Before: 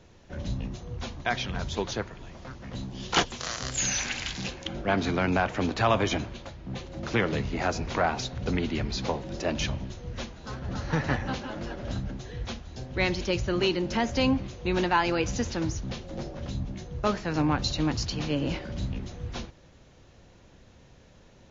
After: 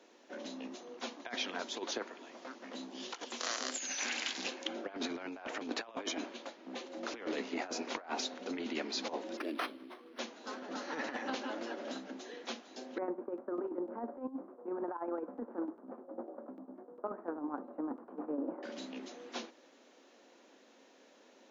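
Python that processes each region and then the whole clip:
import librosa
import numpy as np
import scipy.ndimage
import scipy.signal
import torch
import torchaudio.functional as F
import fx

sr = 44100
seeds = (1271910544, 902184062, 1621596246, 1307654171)

y = fx.chain(x, sr, fx.curve_eq(hz=(110.0, 160.0, 330.0, 880.0, 2400.0, 8000.0), db=(0, -14, 0, -23, -10, 11)),
    fx.resample_linear(factor=6), at=(9.37, 10.19))
y = fx.chain(y, sr, fx.steep_lowpass(hz=1300.0, slope=36),
    fx.tremolo_shape(shape='saw_down', hz=10.0, depth_pct=75), at=(12.98, 18.63))
y = scipy.signal.sosfilt(scipy.signal.ellip(4, 1.0, 50, 250.0, 'highpass', fs=sr, output='sos'), y)
y = fx.over_compress(y, sr, threshold_db=-32.0, ratio=-0.5)
y = y * 10.0 ** (-5.0 / 20.0)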